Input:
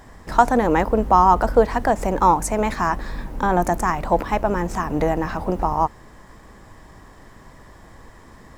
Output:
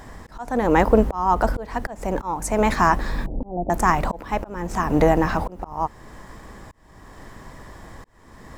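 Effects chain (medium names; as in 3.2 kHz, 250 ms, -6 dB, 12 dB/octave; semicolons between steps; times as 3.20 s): 3.26–3.70 s: elliptic low-pass 710 Hz, stop band 60 dB; slow attack 499 ms; trim +4 dB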